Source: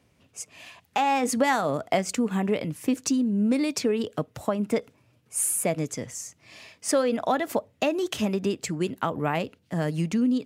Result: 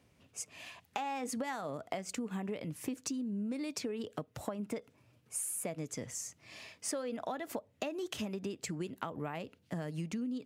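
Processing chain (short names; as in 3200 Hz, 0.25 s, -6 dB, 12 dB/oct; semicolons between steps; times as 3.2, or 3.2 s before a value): compressor 6:1, threshold -32 dBFS, peak gain reduction 14 dB; gain -3.5 dB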